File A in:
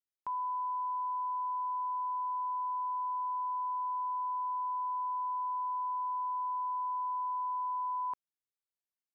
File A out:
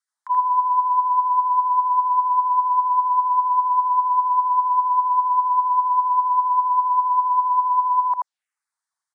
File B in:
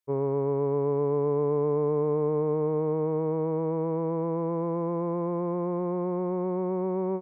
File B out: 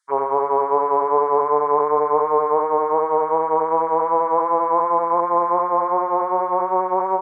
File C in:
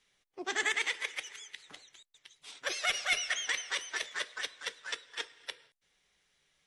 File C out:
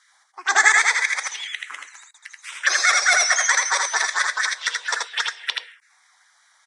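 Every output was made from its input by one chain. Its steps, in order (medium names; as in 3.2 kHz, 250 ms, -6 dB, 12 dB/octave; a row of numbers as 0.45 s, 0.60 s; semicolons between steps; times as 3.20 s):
LFO high-pass sine 5 Hz 780–1900 Hz; touch-sensitive phaser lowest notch 450 Hz, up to 2.9 kHz, full sweep at -33 dBFS; delay 81 ms -3 dB; resampled via 22.05 kHz; normalise loudness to -19 LUFS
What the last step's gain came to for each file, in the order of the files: +11.0 dB, +16.0 dB, +16.5 dB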